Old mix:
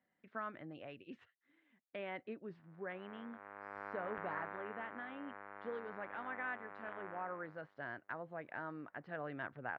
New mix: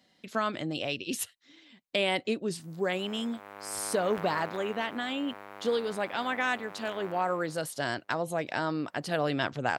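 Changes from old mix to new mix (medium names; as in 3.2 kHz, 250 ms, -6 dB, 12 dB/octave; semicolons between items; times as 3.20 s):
speech +8.0 dB; master: remove four-pole ladder low-pass 2.1 kHz, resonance 40%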